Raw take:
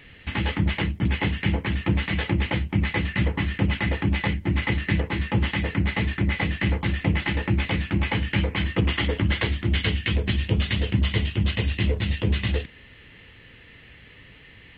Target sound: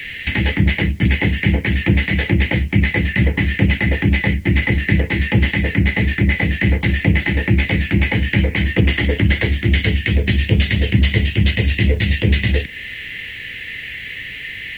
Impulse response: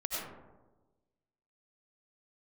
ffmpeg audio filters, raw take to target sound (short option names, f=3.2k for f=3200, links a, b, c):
-filter_complex "[0:a]highshelf=f=1.5k:t=q:w=3:g=9,acrossover=split=260|1000[a][b][c];[c]acompressor=threshold=-31dB:ratio=6[d];[a][b][d]amix=inputs=3:normalize=0,acrusher=bits=9:mix=0:aa=0.000001,volume=8dB"